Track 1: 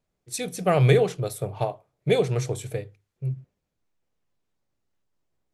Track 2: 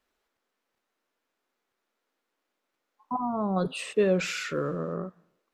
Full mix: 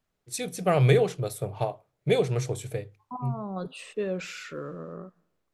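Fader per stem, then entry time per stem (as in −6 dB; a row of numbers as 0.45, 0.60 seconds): −2.0, −7.0 decibels; 0.00, 0.00 seconds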